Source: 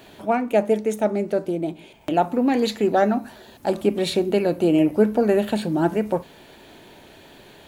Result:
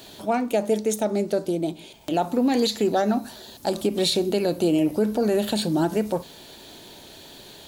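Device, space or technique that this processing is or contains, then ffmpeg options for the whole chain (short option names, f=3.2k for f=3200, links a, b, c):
over-bright horn tweeter: -af "highshelf=f=3.1k:t=q:w=1.5:g=8,alimiter=limit=-13dB:level=0:latency=1:release=67"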